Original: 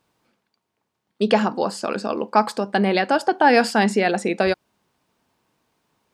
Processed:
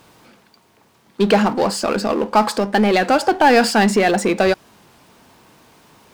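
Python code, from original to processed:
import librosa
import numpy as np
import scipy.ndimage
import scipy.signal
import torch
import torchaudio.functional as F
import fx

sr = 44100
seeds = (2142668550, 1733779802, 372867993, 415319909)

y = fx.power_curve(x, sr, exponent=0.7)
y = fx.record_warp(y, sr, rpm=33.33, depth_cents=100.0)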